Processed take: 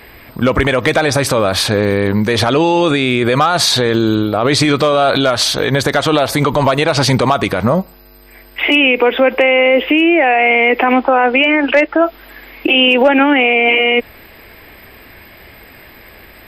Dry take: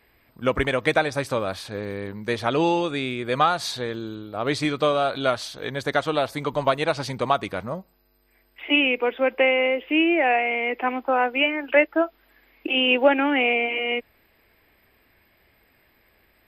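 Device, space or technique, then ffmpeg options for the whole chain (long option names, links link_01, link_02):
loud club master: -filter_complex "[0:a]acompressor=threshold=-24dB:ratio=1.5,asoftclip=type=hard:threshold=-13.5dB,alimiter=level_in=24.5dB:limit=-1dB:release=50:level=0:latency=1,asettb=1/sr,asplit=3[link_01][link_02][link_03];[link_01]atrim=end=10.934[link_04];[link_02]atrim=start=10.93:end=12.01,asetpts=PTS-STARTPTS,afade=type=in:duration=0.004:curve=qsin,afade=type=out:start_time=1.076:duration=0.004:curve=qsin,lowpass=5900[link_05];[link_03]atrim=start=12.006[link_06];[link_04][link_05]acrossfade=duration=0.004:curve1=hsin:curve2=qsin[link_07];[link_07][link_06]acrossfade=duration=0.004:curve1=qsin:curve2=hsin,volume=-2.5dB"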